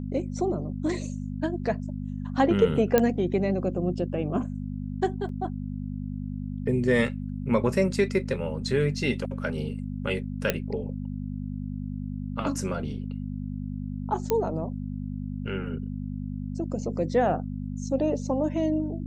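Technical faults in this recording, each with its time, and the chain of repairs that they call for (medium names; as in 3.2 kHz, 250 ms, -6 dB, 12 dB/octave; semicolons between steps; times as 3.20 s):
hum 50 Hz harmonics 5 -33 dBFS
2.98 s: pop -7 dBFS
5.29 s: dropout 2.6 ms
10.50 s: pop -8 dBFS
14.30 s: pop -11 dBFS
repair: de-click; de-hum 50 Hz, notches 5; interpolate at 5.29 s, 2.6 ms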